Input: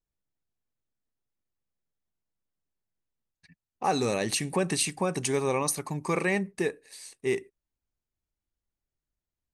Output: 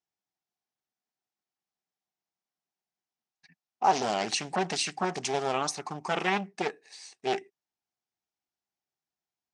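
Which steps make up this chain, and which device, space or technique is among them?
full-range speaker at full volume (Doppler distortion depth 0.77 ms; speaker cabinet 230–7000 Hz, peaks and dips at 280 Hz -5 dB, 520 Hz -9 dB, 760 Hz +9 dB, 5500 Hz +4 dB)

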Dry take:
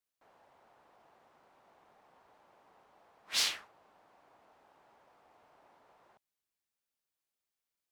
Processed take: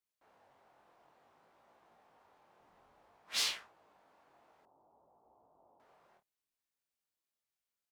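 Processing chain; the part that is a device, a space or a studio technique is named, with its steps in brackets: double-tracked vocal (doubler 30 ms -10.5 dB; chorus 0.57 Hz, delay 17 ms, depth 7.3 ms); 2.6–3.17 low shelf 130 Hz +12 dB; 4.65–5.8 steep low-pass 1000 Hz 36 dB/oct

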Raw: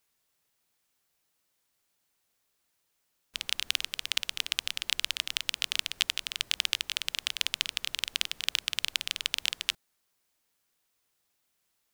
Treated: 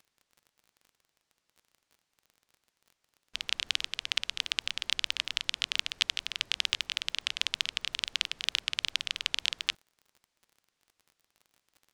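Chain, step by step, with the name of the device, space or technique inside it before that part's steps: lo-fi chain (LPF 6300 Hz 12 dB/oct; wow and flutter; crackle 31/s -45 dBFS)

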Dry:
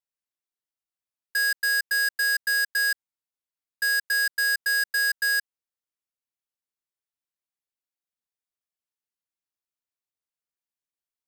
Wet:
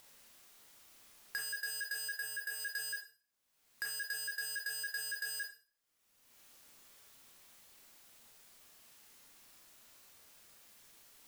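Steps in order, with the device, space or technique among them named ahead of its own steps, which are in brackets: upward and downward compression (upward compressor, threshold -31 dBFS; compressor 6:1, threshold -32 dBFS, peak gain reduction 8 dB); 2.16–2.6 bell 5100 Hz -6 dB 1 oct; Schroeder reverb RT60 0.41 s, combs from 27 ms, DRR 0 dB; gain -6.5 dB

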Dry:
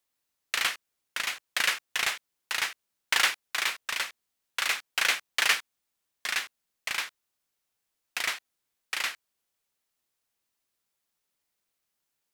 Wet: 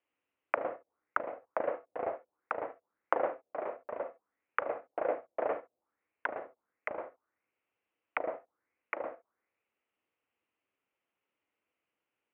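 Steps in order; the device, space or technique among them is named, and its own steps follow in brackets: non-linear reverb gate 80 ms rising, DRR 11 dB; envelope filter bass rig (envelope low-pass 610–2900 Hz down, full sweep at -32 dBFS; speaker cabinet 89–2100 Hz, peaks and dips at 150 Hz -7 dB, 310 Hz +6 dB, 490 Hz +6 dB, 1700 Hz -5 dB)

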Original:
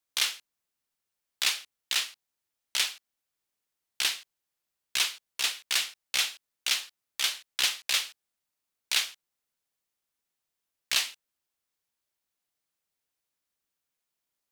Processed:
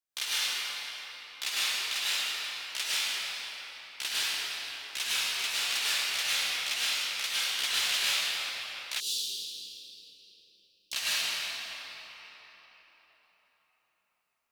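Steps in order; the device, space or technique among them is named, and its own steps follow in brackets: cathedral (reverb RT60 4.6 s, pre-delay 94 ms, DRR -11 dB); 9–10.93 inverse Chebyshev band-stop 720–2200 Hz, stop band 40 dB; gain -8.5 dB

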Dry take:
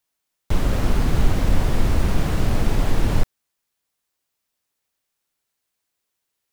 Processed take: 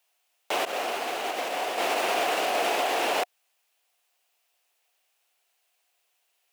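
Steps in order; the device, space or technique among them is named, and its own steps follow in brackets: laptop speaker (HPF 420 Hz 24 dB/oct; bell 720 Hz +10 dB 0.32 oct; bell 2700 Hz +7.5 dB 0.58 oct; limiter -21 dBFS, peak gain reduction 5.5 dB); 0.65–1.78 expander -25 dBFS; gain +4.5 dB

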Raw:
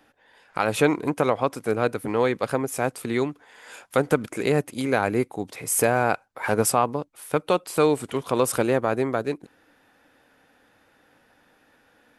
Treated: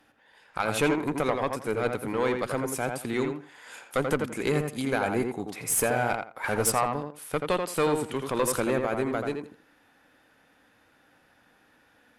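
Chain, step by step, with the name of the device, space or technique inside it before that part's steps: rockabilly slapback (tube stage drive 10 dB, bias 0.45; tape echo 84 ms, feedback 23%, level -3.5 dB, low-pass 2300 Hz); bell 500 Hz -3.5 dB 1.6 oct

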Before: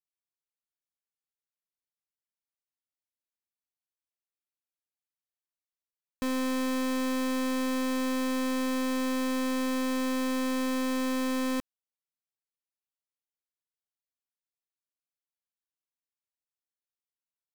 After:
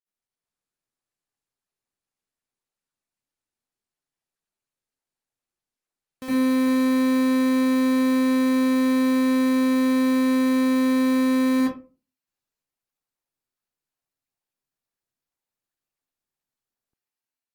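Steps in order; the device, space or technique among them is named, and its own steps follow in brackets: far-field microphone of a smart speaker (reverb RT60 0.35 s, pre-delay 59 ms, DRR -10 dB; HPF 91 Hz 6 dB/oct; AGC gain up to 4 dB; gain -8 dB; Opus 32 kbps 48000 Hz)

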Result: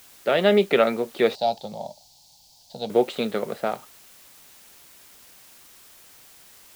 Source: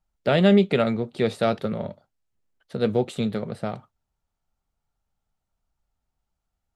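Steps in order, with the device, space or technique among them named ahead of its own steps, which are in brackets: dictaphone (BPF 370–4300 Hz; AGC gain up to 6 dB; wow and flutter; white noise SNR 25 dB); 1.35–2.9 EQ curve 140 Hz 0 dB, 410 Hz -18 dB, 840 Hz +3 dB, 1200 Hz -27 dB, 2000 Hz -23 dB, 4500 Hz +5 dB, 10000 Hz -9 dB

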